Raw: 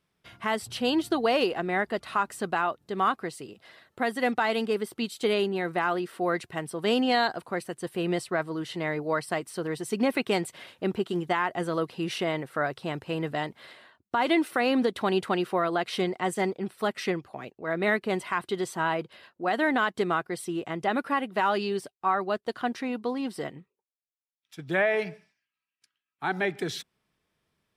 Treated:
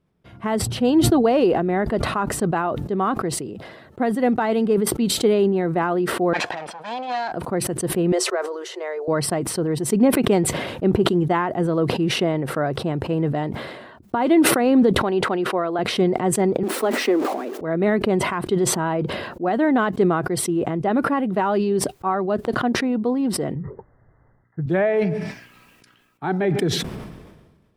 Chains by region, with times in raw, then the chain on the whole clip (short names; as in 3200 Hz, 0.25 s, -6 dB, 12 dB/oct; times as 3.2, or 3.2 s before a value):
6.33–7.32 minimum comb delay 1.2 ms + BPF 730–5200 Hz + upward compressor, threshold -44 dBFS
8.12–9.08 rippled Chebyshev high-pass 360 Hz, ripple 3 dB + bell 6300 Hz +11 dB 0.53 oct
15.02–15.79 HPF 460 Hz 6 dB/oct + high shelf 6800 Hz -9 dB
16.63–17.61 zero-crossing step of -35.5 dBFS + steep high-pass 240 Hz 48 dB/oct
23.55–24.66 brick-wall FIR low-pass 2100 Hz + resonant low shelf 170 Hz +8.5 dB, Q 1.5
whole clip: tilt shelf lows +9 dB; sustainer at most 42 dB/s; gain +2 dB